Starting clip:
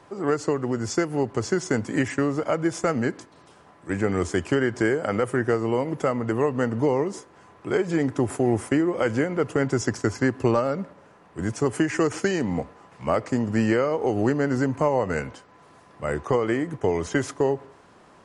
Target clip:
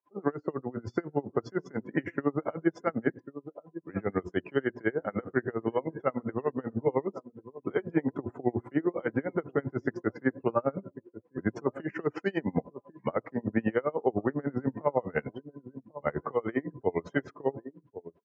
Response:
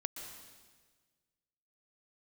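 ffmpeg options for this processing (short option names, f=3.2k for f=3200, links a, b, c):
-filter_complex "[0:a]alimiter=limit=-15dB:level=0:latency=1:release=249,highpass=120,bandreject=f=60:t=h:w=6,bandreject=f=120:t=h:w=6,bandreject=f=180:t=h:w=6,bandreject=f=240:t=h:w=6,bandreject=f=300:t=h:w=6,bandreject=f=360:t=h:w=6,asplit=2[a][b];[b]adelay=1095,lowpass=f=1.5k:p=1,volume=-13.5dB,asplit=2[c][d];[d]adelay=1095,lowpass=f=1.5k:p=1,volume=0.23,asplit=2[e][f];[f]adelay=1095,lowpass=f=1.5k:p=1,volume=0.23[g];[a][c][e][g]amix=inputs=4:normalize=0,afftdn=nr=26:nf=-39,lowpass=f=3.7k:w=0.5412,lowpass=f=3.7k:w=1.3066,aeval=exprs='val(0)*pow(10,-31*(0.5-0.5*cos(2*PI*10*n/s))/20)':c=same,volume=3dB"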